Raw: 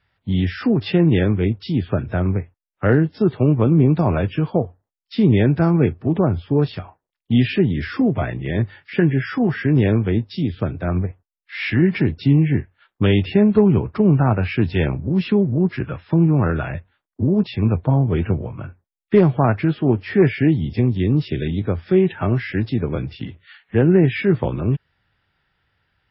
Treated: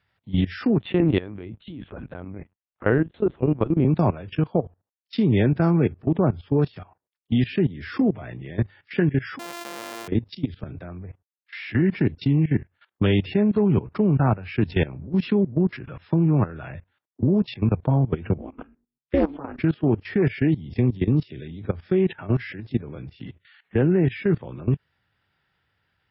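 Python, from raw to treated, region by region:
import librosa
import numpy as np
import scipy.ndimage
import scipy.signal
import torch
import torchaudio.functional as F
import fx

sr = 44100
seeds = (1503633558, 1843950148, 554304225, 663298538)

y = fx.chain(x, sr, fx.highpass(hz=100.0, slope=6),
    fx.lpc_vocoder(seeds[0], excitation='pitch_kept', order=10), at=(0.8, 3.85))
y = fx.chain(y, sr, fx.sample_sort(block=128),
    fx.highpass(hz=510.0, slope=12), at=(9.39, 10.08))
y = fx.chain(y, sr, fx.hum_notches(base_hz=50, count=6),
    fx.ring_mod(carrier_hz=140.0), at=(18.38, 19.6))
y = scipy.signal.sosfilt(scipy.signal.butter(2, 69.0, 'highpass', fs=sr, output='sos'), y)
y = fx.level_steps(y, sr, step_db=18)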